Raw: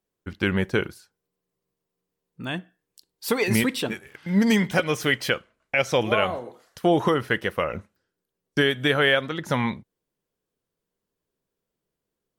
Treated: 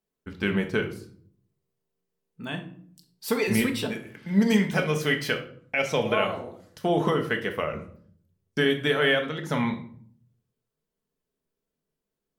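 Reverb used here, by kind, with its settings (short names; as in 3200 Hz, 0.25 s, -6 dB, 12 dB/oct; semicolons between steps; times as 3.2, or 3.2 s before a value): shoebox room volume 720 m³, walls furnished, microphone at 1.5 m; gain -4.5 dB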